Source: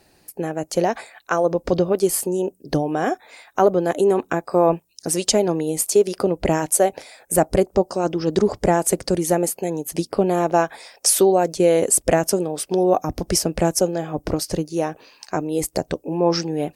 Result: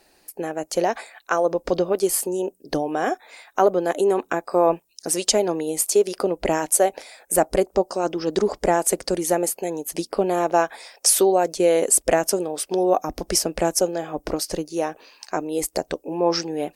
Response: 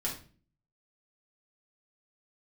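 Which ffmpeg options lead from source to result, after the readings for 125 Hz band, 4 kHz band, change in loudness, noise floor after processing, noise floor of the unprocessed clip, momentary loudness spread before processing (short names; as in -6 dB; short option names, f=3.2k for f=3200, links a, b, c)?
-9.0 dB, 0.0 dB, -1.5 dB, -62 dBFS, -59 dBFS, 9 LU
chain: -af "equalizer=f=110:t=o:w=1.6:g=-15"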